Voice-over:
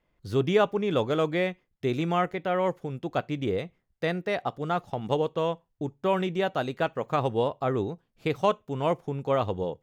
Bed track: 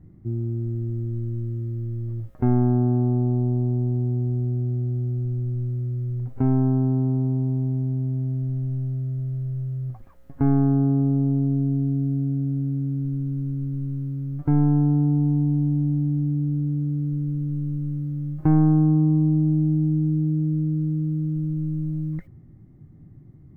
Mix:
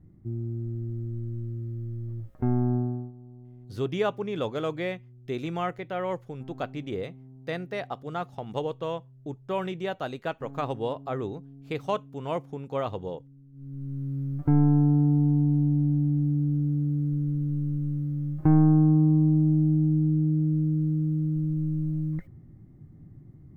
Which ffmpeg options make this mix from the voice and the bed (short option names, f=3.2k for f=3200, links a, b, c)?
-filter_complex "[0:a]adelay=3450,volume=-4.5dB[a];[1:a]volume=18.5dB,afade=t=out:st=2.75:d=0.37:silence=0.1,afade=t=in:st=13.52:d=0.67:silence=0.0630957[b];[a][b]amix=inputs=2:normalize=0"